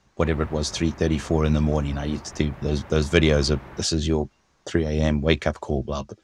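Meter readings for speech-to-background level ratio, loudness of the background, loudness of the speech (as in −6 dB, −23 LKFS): 19.5 dB, −43.5 LKFS, −24.0 LKFS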